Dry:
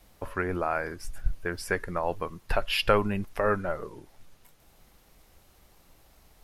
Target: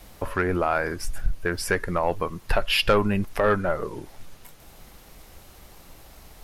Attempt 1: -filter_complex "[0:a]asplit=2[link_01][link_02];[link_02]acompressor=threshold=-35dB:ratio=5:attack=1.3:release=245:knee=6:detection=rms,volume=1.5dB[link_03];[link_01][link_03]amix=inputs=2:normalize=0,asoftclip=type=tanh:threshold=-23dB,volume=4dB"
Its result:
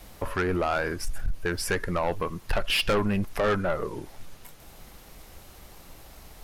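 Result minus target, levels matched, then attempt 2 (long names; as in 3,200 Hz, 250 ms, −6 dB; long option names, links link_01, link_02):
soft clipping: distortion +9 dB
-filter_complex "[0:a]asplit=2[link_01][link_02];[link_02]acompressor=threshold=-35dB:ratio=5:attack=1.3:release=245:knee=6:detection=rms,volume=1.5dB[link_03];[link_01][link_03]amix=inputs=2:normalize=0,asoftclip=type=tanh:threshold=-14dB,volume=4dB"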